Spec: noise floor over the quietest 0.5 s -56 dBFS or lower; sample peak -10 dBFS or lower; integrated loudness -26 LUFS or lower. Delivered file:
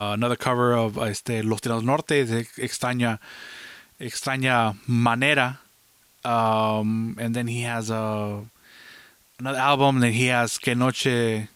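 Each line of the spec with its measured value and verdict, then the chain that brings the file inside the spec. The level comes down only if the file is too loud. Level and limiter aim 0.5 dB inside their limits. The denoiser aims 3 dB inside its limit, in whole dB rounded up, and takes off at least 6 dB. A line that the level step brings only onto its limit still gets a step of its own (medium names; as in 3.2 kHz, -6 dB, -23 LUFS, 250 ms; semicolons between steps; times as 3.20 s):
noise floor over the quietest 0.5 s -59 dBFS: pass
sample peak -4.0 dBFS: fail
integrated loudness -23.5 LUFS: fail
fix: trim -3 dB; peak limiter -10.5 dBFS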